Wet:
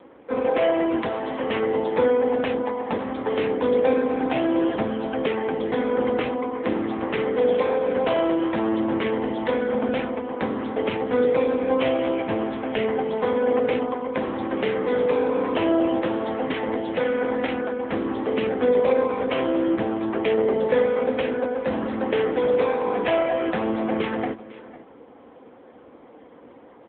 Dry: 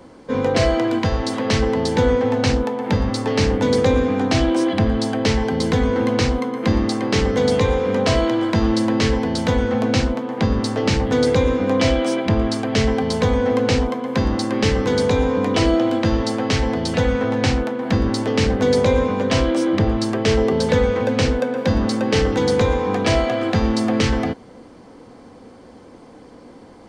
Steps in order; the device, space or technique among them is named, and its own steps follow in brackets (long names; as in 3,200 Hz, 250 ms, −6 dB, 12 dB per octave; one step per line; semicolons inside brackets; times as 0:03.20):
satellite phone (band-pass filter 310–3,200 Hz; single-tap delay 500 ms −18 dB; AMR narrowband 6.7 kbit/s 8,000 Hz)